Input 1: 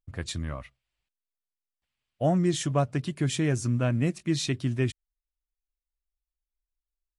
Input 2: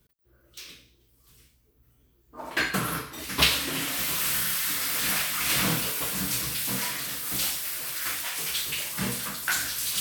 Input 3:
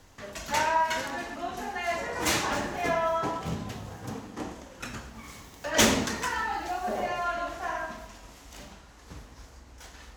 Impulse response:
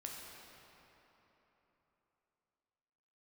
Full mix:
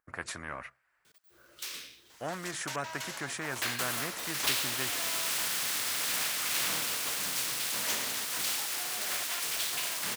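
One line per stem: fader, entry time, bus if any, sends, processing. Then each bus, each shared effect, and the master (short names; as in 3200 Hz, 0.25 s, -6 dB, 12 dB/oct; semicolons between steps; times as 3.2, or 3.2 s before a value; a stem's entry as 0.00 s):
-1.0 dB, 0.00 s, no send, resonant high shelf 2300 Hz -12.5 dB, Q 3
-6.5 dB, 1.05 s, no send, median filter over 3 samples
-15.0 dB, 2.10 s, no send, step gate "xxx.x..x.xxx" 183 bpm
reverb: off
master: HPF 1200 Hz 6 dB/oct; spectral compressor 2:1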